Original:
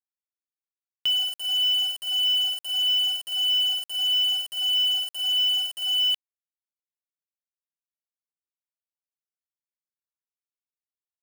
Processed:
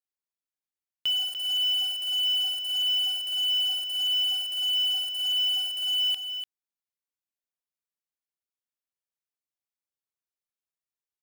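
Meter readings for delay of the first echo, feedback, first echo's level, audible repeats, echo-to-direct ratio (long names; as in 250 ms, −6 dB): 294 ms, repeats not evenly spaced, −8.5 dB, 1, −8.5 dB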